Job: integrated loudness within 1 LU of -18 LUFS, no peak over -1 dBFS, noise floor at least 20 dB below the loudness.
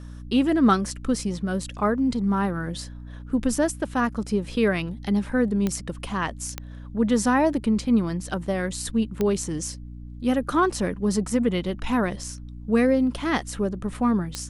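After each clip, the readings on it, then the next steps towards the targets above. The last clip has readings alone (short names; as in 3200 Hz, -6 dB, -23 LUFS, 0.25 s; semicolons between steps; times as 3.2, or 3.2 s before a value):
clicks 4; hum 60 Hz; harmonics up to 300 Hz; hum level -37 dBFS; loudness -24.5 LUFS; peak -7.5 dBFS; loudness target -18.0 LUFS
-> de-click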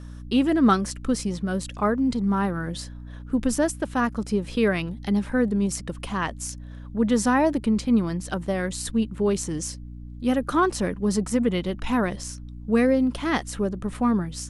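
clicks 0; hum 60 Hz; harmonics up to 300 Hz; hum level -37 dBFS
-> de-hum 60 Hz, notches 5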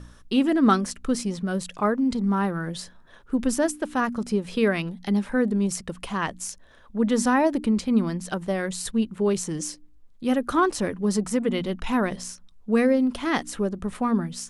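hum none; loudness -25.0 LUFS; peak -7.0 dBFS; loudness target -18.0 LUFS
-> gain +7 dB; limiter -1 dBFS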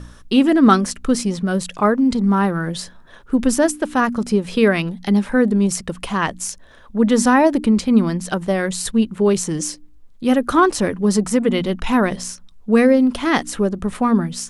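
loudness -18.0 LUFS; peak -1.0 dBFS; noise floor -44 dBFS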